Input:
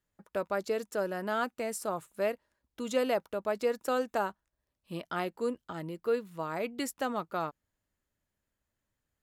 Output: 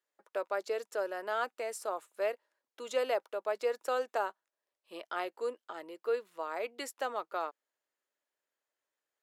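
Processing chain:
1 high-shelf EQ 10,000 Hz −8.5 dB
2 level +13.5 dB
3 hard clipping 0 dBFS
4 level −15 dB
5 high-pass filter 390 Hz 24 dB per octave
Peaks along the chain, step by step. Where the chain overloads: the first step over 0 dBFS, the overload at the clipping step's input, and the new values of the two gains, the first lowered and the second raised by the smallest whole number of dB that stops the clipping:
−16.5, −3.0, −3.0, −18.0, −18.5 dBFS
no step passes full scale

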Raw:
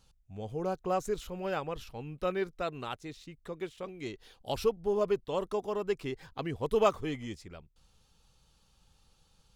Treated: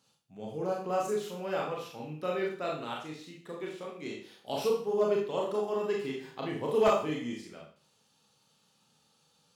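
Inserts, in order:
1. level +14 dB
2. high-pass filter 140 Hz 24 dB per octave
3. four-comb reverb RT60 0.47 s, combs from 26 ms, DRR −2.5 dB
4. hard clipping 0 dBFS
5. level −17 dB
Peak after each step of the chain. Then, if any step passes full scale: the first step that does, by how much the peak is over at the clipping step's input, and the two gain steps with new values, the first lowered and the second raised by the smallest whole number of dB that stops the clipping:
+2.5, +2.0, +7.5, 0.0, −17.0 dBFS
step 1, 7.5 dB
step 1 +6 dB, step 5 −9 dB

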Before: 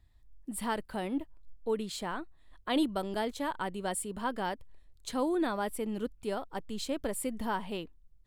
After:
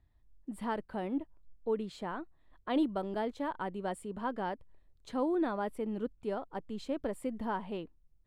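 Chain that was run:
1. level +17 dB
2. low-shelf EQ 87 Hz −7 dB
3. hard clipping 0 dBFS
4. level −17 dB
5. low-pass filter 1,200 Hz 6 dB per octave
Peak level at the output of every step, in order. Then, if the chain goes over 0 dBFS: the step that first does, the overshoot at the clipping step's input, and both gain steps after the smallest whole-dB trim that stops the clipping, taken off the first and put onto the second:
−1.5, −2.0, −2.0, −19.0, −21.0 dBFS
no step passes full scale

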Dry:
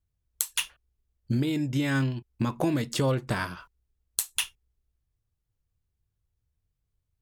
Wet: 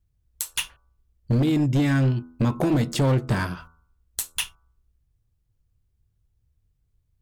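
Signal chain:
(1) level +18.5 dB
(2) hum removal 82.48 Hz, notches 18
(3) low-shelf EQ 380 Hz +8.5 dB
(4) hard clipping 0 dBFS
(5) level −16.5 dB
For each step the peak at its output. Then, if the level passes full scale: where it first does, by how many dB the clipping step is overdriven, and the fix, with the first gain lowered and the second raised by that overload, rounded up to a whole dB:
+10.0, +10.0, +10.0, 0.0, −16.5 dBFS
step 1, 10.0 dB
step 1 +8.5 dB, step 5 −6.5 dB

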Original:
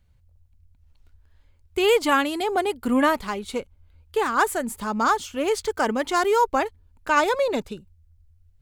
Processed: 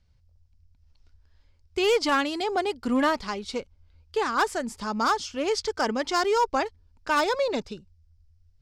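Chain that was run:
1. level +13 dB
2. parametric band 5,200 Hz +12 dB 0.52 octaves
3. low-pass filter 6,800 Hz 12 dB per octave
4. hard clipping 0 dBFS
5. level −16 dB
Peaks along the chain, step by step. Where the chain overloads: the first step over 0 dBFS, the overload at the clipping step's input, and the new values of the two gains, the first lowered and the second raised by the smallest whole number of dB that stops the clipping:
+7.0, +7.5, +7.5, 0.0, −16.0 dBFS
step 1, 7.5 dB
step 1 +5 dB, step 5 −8 dB

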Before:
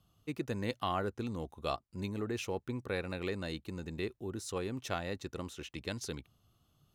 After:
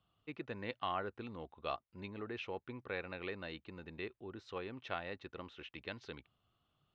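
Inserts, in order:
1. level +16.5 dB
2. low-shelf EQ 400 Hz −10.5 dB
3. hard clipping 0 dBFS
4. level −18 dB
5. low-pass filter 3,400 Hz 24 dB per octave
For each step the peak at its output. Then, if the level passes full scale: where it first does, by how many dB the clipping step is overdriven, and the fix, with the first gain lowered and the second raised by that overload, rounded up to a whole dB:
−1.5, −2.5, −2.5, −20.5, −21.0 dBFS
no step passes full scale

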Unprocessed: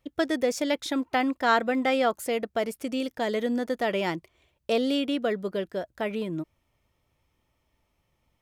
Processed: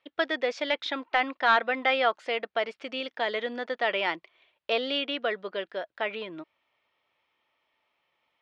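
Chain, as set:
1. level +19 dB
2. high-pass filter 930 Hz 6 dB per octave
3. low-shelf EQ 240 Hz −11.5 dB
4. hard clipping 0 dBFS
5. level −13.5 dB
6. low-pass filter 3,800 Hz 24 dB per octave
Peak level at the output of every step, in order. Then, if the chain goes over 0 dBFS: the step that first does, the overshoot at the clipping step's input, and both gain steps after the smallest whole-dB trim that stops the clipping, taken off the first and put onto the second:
+9.0, +7.0, +7.0, 0.0, −13.5, −12.5 dBFS
step 1, 7.0 dB
step 1 +12 dB, step 5 −6.5 dB

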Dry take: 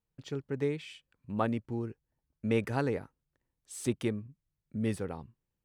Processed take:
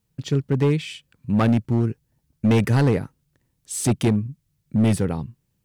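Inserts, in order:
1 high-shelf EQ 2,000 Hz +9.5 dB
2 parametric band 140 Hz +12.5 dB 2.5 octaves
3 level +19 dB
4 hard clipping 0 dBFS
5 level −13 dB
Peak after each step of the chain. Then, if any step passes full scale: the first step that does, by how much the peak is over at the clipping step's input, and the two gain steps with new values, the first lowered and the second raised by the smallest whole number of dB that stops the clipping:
−14.0, −9.5, +9.5, 0.0, −13.0 dBFS
step 3, 9.5 dB
step 3 +9 dB, step 5 −3 dB

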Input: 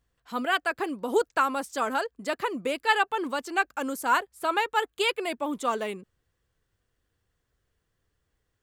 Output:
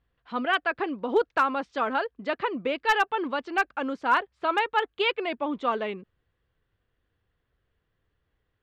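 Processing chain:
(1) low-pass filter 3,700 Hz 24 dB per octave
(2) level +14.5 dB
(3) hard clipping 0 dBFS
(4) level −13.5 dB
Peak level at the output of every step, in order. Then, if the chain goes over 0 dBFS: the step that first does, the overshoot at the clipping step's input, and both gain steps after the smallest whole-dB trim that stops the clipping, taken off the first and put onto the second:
−9.0, +5.5, 0.0, −13.5 dBFS
step 2, 5.5 dB
step 2 +8.5 dB, step 4 −7.5 dB

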